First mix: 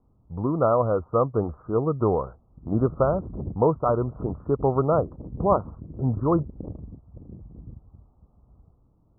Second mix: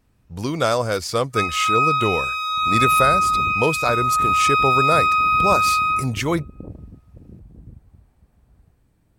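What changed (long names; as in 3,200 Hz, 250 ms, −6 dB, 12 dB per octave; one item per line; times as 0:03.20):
first sound: unmuted
reverb: on, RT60 1.9 s
master: remove Butterworth low-pass 1,300 Hz 96 dB per octave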